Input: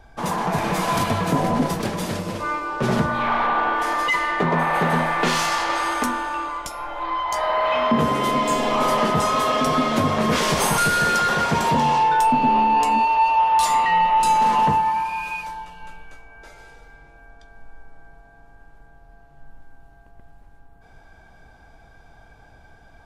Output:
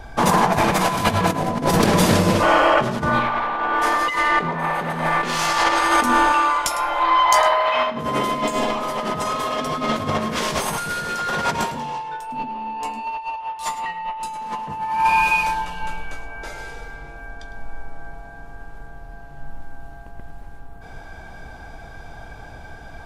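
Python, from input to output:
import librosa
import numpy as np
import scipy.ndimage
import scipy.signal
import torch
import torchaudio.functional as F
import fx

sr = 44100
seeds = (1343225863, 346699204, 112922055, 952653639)

y = fx.spec_repair(x, sr, seeds[0], start_s=2.46, length_s=0.45, low_hz=460.0, high_hz=3300.0, source='after')
y = fx.low_shelf(y, sr, hz=430.0, db=-10.5, at=(6.32, 7.87))
y = fx.over_compress(y, sr, threshold_db=-25.0, ratio=-0.5)
y = y + 10.0 ** (-14.5 / 20.0) * np.pad(y, (int(105 * sr / 1000.0), 0))[:len(y)]
y = y * 10.0 ** (5.5 / 20.0)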